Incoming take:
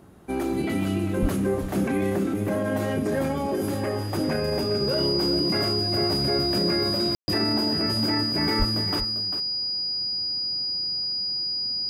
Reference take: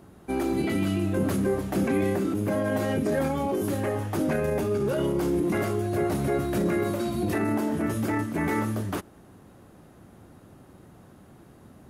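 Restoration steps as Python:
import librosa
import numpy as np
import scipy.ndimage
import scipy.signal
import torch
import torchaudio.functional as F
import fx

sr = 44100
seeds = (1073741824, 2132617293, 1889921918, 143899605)

y = fx.notch(x, sr, hz=4900.0, q=30.0)
y = fx.highpass(y, sr, hz=140.0, slope=24, at=(1.21, 1.33), fade=0.02)
y = fx.highpass(y, sr, hz=140.0, slope=24, at=(8.58, 8.7), fade=0.02)
y = fx.fix_ambience(y, sr, seeds[0], print_start_s=0.0, print_end_s=0.5, start_s=7.15, end_s=7.28)
y = fx.fix_echo_inverse(y, sr, delay_ms=397, level_db=-10.5)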